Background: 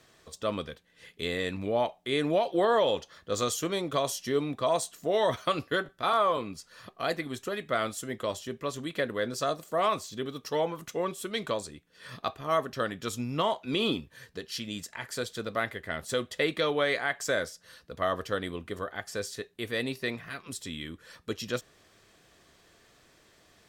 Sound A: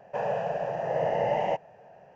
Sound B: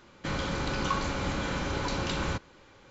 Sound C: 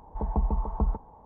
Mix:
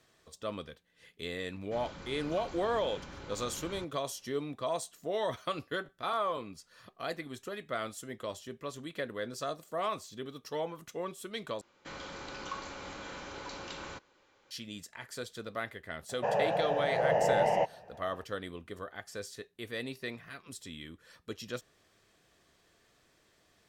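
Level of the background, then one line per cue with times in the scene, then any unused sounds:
background -7 dB
1.47 add B -15.5 dB
11.61 replace with B -10 dB + tone controls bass -11 dB, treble +1 dB
16.09 add A -0.5 dB
not used: C

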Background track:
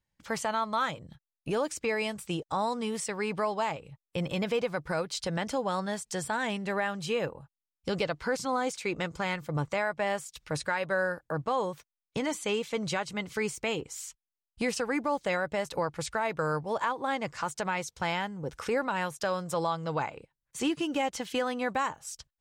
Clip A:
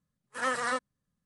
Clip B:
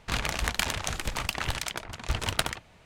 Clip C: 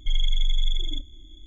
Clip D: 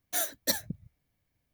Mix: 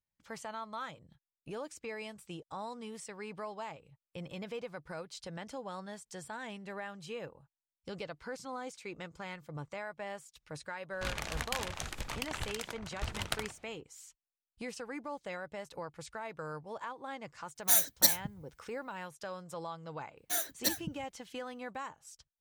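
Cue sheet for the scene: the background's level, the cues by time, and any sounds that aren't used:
background track -12 dB
10.93 add B -8.5 dB
17.55 add D -3.5 dB, fades 0.02 s + high shelf 3400 Hz +10 dB
20.17 add D -3 dB + notch 600 Hz, Q 9.6
not used: A, C

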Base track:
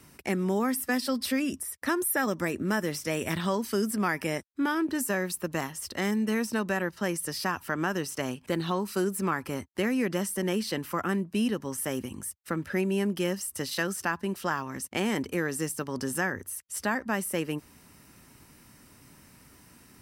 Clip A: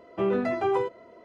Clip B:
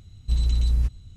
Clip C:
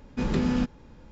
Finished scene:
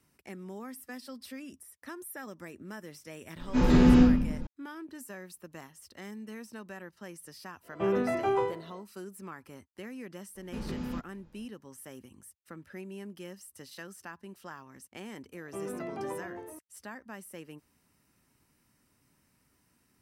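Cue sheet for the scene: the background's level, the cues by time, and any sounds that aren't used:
base track -15.5 dB
3.36 add C -5.5 dB + shoebox room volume 170 m³, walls mixed, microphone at 2.8 m
7.62 add A -3 dB, fades 0.10 s + spectral trails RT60 0.41 s
10.35 add C -11.5 dB
15.35 add A -13 dB + echoes that change speed 0.177 s, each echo -2 st, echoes 2, each echo -6 dB
not used: B

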